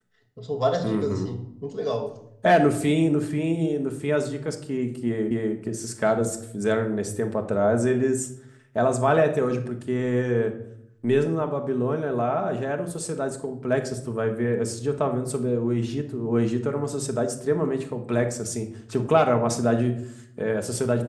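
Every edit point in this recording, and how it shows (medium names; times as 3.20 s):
5.31 s: repeat of the last 0.25 s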